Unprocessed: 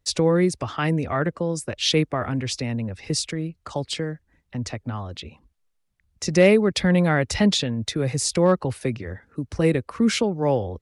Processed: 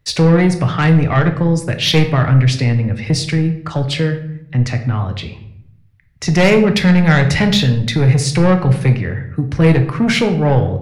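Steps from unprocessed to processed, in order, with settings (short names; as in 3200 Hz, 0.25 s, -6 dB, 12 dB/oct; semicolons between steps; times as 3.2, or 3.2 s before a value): ten-band EQ 125 Hz +10 dB, 2000 Hz +7 dB, 8000 Hz -7 dB; soft clip -14.5 dBFS, distortion -12 dB; shoebox room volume 170 m³, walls mixed, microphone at 0.49 m; gain +6.5 dB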